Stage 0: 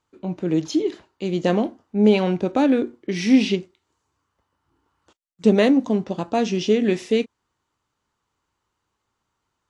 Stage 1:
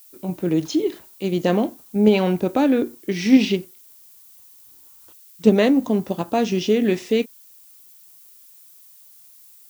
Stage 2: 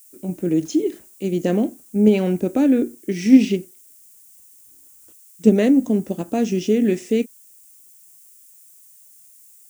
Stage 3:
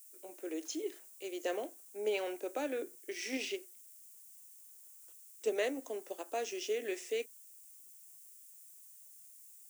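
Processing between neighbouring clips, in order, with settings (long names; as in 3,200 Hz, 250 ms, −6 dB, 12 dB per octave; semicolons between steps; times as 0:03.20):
in parallel at −1.5 dB: output level in coarse steps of 12 dB; on the sum: background noise violet −46 dBFS; level −2.5 dB
graphic EQ with 10 bands 125 Hz −4 dB, 250 Hz +4 dB, 1,000 Hz −11 dB, 4,000 Hz −10 dB, 8,000 Hz +8 dB, 16,000 Hz −3 dB
Bessel high-pass filter 650 Hz, order 8; level −7.5 dB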